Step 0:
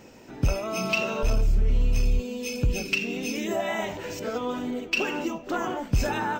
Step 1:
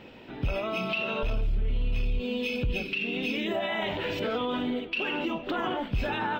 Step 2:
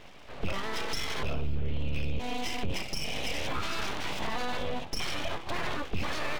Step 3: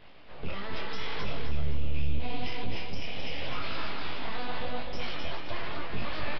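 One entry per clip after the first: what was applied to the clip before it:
high shelf with overshoot 4,700 Hz −11.5 dB, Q 3; speech leveller within 4 dB 0.5 s; brickwall limiter −21 dBFS, peak gain reduction 9.5 dB
full-wave rectification
repeating echo 261 ms, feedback 43%, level −5 dB; downsampling to 11,025 Hz; micro pitch shift up and down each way 28 cents

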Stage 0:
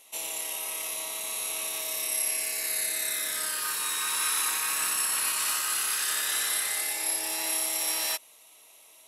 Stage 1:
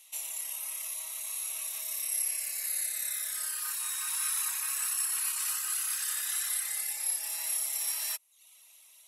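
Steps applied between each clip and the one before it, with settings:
dynamic equaliser 3,600 Hz, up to −6 dB, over −46 dBFS, Q 0.86
reverb reduction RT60 0.57 s
guitar amp tone stack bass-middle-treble 10-0-10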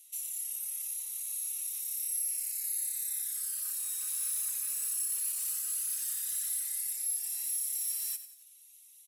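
soft clipping −28.5 dBFS, distortion −15 dB
first-order pre-emphasis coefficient 0.9
echo with shifted repeats 92 ms, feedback 47%, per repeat −31 Hz, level −12 dB
level −1.5 dB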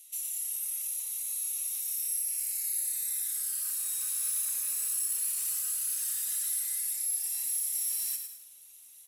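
in parallel at −6.5 dB: hard clipping −39 dBFS, distortion −7 dB
on the sum: feedback echo at a low word length 108 ms, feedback 35%, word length 10 bits, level −8 dB

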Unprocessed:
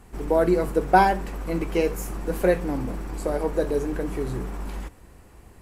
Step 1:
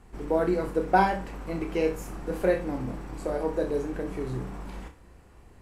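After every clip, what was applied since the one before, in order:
high-shelf EQ 9,700 Hz −11.5 dB
flutter between parallel walls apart 5.4 metres, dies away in 0.27 s
level −4.5 dB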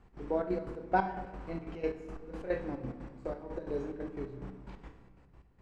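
gate pattern "x.xxx.x.x..x.." 180 BPM −12 dB
high-frequency loss of the air 110 metres
on a send at −9 dB: convolution reverb RT60 1.4 s, pre-delay 14 ms
on the sum: level −6.5 dB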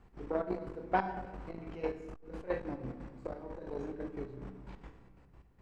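saturating transformer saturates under 690 Hz

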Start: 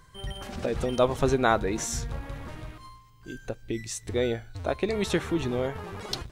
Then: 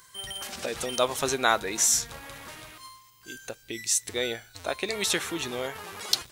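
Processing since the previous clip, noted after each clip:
spectral tilt +4 dB per octave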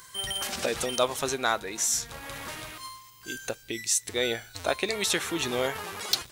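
speech leveller within 5 dB 0.5 s
hard clipping −11.5 dBFS, distortion −19 dB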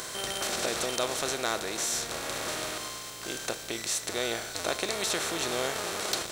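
compressor on every frequency bin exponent 0.4
level −8.5 dB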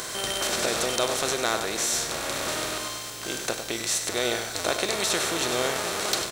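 single-tap delay 97 ms −9 dB
level +4 dB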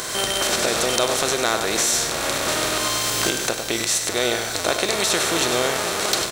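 camcorder AGC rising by 17 dB per second
level +4.5 dB

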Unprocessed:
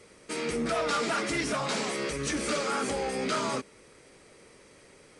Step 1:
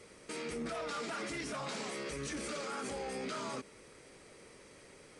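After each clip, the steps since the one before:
brickwall limiter −30.5 dBFS, peak gain reduction 11 dB
level −1.5 dB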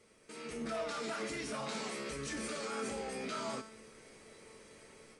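tuned comb filter 220 Hz, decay 0.61 s, harmonics all, mix 80%
automatic gain control gain up to 9 dB
level +2.5 dB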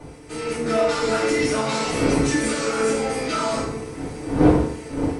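wind on the microphone 390 Hz −43 dBFS
feedback delay network reverb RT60 0.66 s, low-frequency decay 0.9×, high-frequency decay 0.75×, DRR −7.5 dB
level +7.5 dB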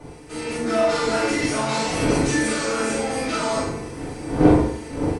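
double-tracking delay 42 ms −2 dB
level −1.5 dB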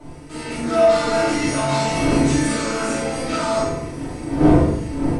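rectangular room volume 900 cubic metres, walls furnished, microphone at 2.8 metres
level −2.5 dB

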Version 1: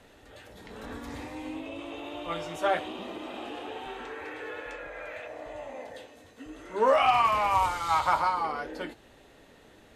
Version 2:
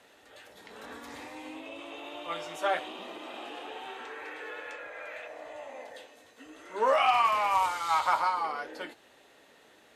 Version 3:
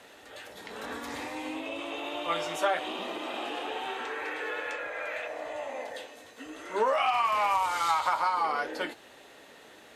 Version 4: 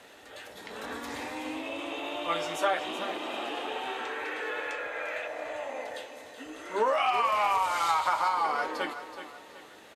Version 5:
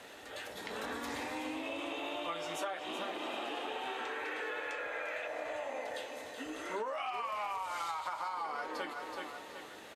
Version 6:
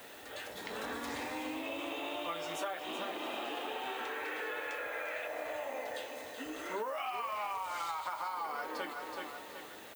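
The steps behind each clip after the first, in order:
high-pass filter 600 Hz 6 dB per octave
downward compressor 12 to 1, threshold −29 dBFS, peak gain reduction 10.5 dB; level +6.5 dB
repeating echo 376 ms, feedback 37%, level −11 dB
downward compressor 6 to 1, threshold −37 dBFS, peak gain reduction 14.5 dB; level +1 dB
background noise violet −59 dBFS

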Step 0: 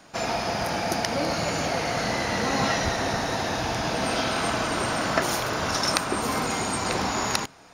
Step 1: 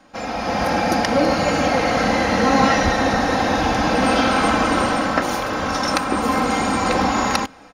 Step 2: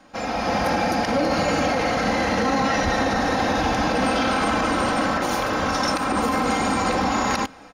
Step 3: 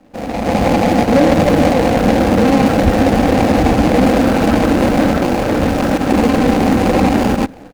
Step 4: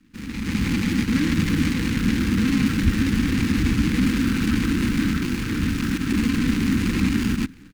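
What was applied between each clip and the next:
high-shelf EQ 3,500 Hz −10.5 dB; comb filter 3.8 ms, depth 58%; automatic gain control gain up to 9 dB
brickwall limiter −12.5 dBFS, peak gain reduction 10 dB
running median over 41 samples; automatic gain control gain up to 6 dB; level +7 dB
Butterworth band-reject 640 Hz, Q 0.51; level −5 dB

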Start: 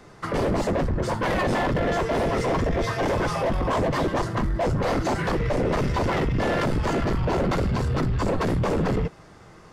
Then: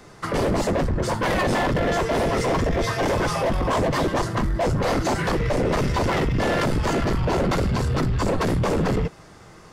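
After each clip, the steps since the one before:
high-shelf EQ 4,200 Hz +6 dB
level +1.5 dB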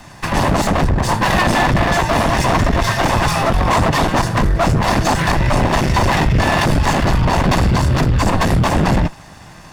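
lower of the sound and its delayed copy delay 1.1 ms
level +9 dB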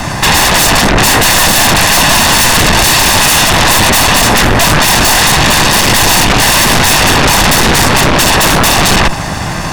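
sine wavefolder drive 19 dB, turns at −4.5 dBFS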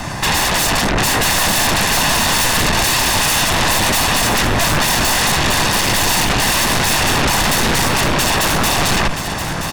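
single-tap delay 975 ms −9 dB
level −8 dB

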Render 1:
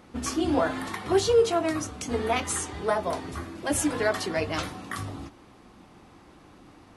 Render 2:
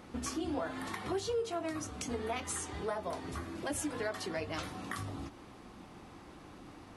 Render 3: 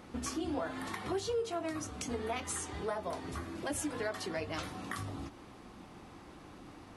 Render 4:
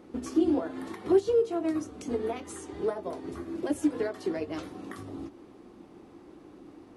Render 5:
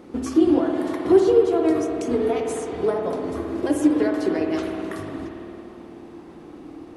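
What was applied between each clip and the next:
downward compressor 2.5 to 1, threshold −39 dBFS, peak gain reduction 15.5 dB
no processing that can be heard
parametric band 350 Hz +14 dB 1.4 octaves; expander for the loud parts 1.5 to 1, over −36 dBFS; level +1.5 dB
spring reverb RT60 2.9 s, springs 53 ms, chirp 60 ms, DRR 2 dB; level +7 dB

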